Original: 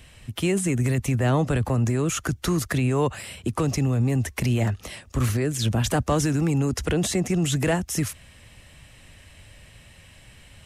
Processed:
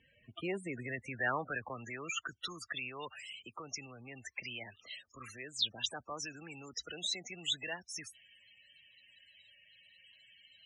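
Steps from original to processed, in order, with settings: loudest bins only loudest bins 32; band-pass sweep 920 Hz -> 3.8 kHz, 0.17–2.79 s; trim +3 dB

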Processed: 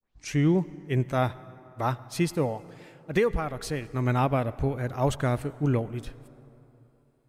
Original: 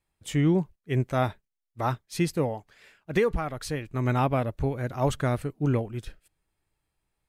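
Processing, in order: tape start-up on the opening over 0.36 s; on a send: reverberation RT60 3.3 s, pre-delay 73 ms, DRR 18 dB

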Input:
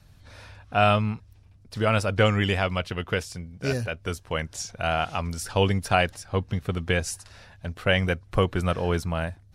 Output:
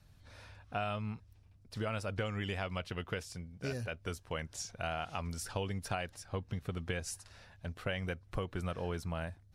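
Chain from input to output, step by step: compression 6:1, threshold -25 dBFS, peak gain reduction 10 dB; trim -8 dB

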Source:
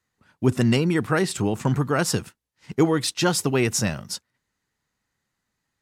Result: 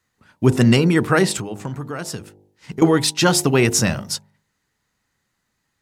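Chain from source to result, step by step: de-hum 50.68 Hz, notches 19; 1.38–2.82 s: compression 4:1, threshold -34 dBFS, peak gain reduction 15 dB; trim +6 dB

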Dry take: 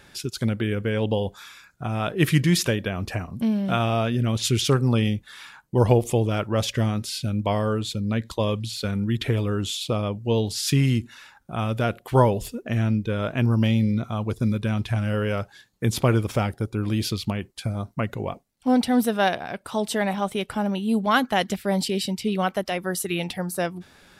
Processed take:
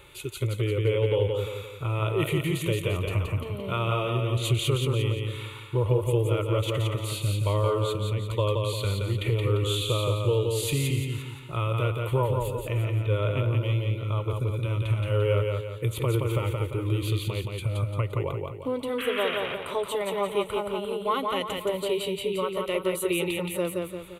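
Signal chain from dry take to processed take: harmonic-percussive split percussive -8 dB; compression 4:1, threshold -27 dBFS, peak gain reduction 11 dB; static phaser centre 1.1 kHz, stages 8; painted sound noise, 18.98–19.38 s, 1.1–3.4 kHz -41 dBFS; feedback delay 173 ms, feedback 43%, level -3.5 dB; trim +7 dB

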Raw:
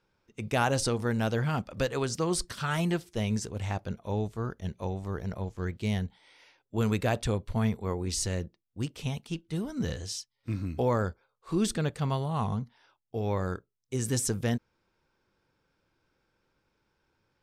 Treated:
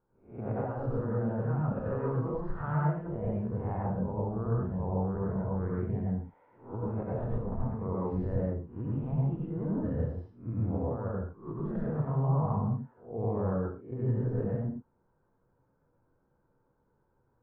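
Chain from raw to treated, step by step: reverse spectral sustain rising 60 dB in 0.42 s; low-pass 1.2 kHz 24 dB/octave; compressor with a negative ratio -30 dBFS, ratio -0.5; reverberation, pre-delay 86 ms, DRR -4.5 dB; trim -6.5 dB

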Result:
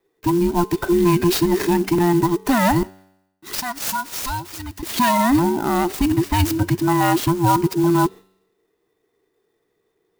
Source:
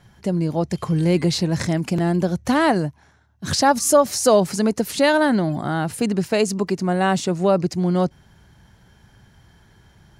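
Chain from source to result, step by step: every band turned upside down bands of 500 Hz; gate with hold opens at -39 dBFS; 2.83–4.83 s: amplifier tone stack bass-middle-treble 5-5-5; peak limiter -11.5 dBFS, peak gain reduction 5.5 dB; feedback comb 95 Hz, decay 0.89 s, harmonics all, mix 40%; sampling jitter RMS 0.035 ms; trim +7.5 dB

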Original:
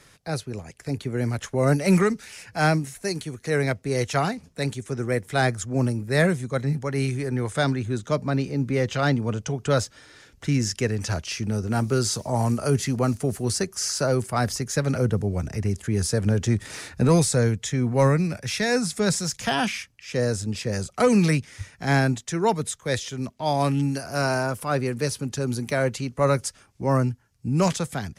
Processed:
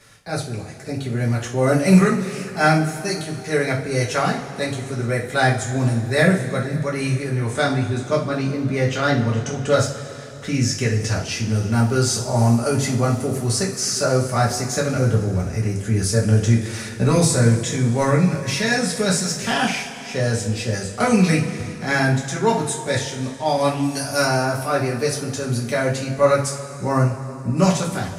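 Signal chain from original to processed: 23.83–24.25 s: treble shelf 3.8 kHz +9 dB; two-slope reverb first 0.32 s, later 3.2 s, from -18 dB, DRR -4.5 dB; trim -1 dB

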